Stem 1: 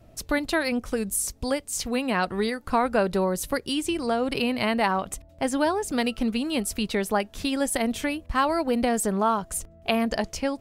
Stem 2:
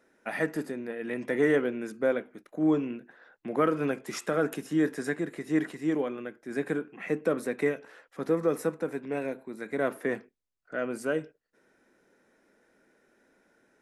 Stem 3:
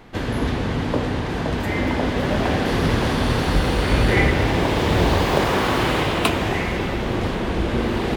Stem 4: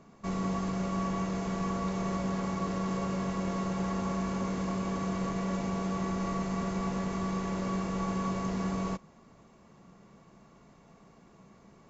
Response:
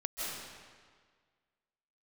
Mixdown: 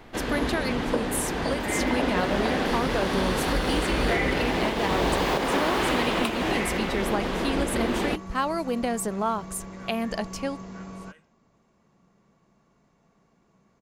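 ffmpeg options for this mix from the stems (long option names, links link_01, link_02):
-filter_complex "[0:a]volume=-3.5dB[link_01];[1:a]highpass=1500,volume=-13dB[link_02];[2:a]equalizer=frequency=97:width=1.2:gain=-13.5,volume=-2dB[link_03];[3:a]adelay=2150,volume=-7.5dB[link_04];[link_01][link_02][link_03][link_04]amix=inputs=4:normalize=0,alimiter=limit=-13.5dB:level=0:latency=1:release=236"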